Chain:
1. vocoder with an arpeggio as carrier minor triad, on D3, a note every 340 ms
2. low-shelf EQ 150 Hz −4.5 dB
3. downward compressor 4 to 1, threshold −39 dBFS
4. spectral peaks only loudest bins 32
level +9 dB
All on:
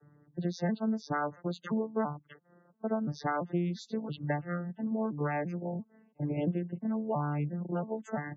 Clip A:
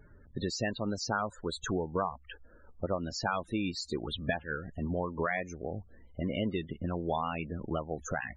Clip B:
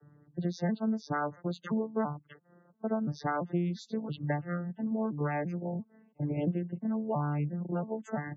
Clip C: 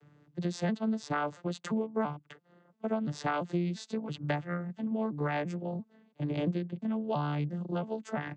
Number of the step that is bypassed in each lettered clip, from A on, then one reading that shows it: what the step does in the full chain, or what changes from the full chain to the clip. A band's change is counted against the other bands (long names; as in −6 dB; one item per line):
1, 4 kHz band +11.0 dB
2, 125 Hz band +1.5 dB
4, 4 kHz band +4.5 dB